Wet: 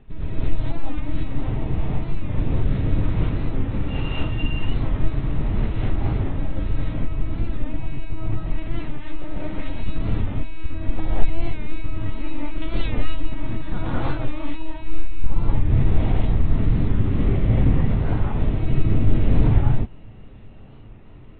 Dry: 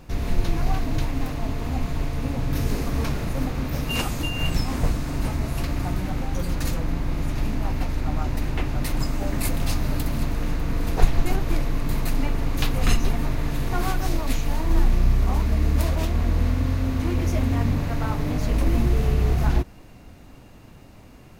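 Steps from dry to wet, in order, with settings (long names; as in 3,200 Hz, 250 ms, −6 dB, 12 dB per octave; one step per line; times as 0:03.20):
linear-prediction vocoder at 8 kHz pitch kept
low-shelf EQ 200 Hz +11 dB
reverb whose tail is shaped and stops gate 250 ms rising, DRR −7.5 dB
wow of a warped record 45 rpm, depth 100 cents
level −11.5 dB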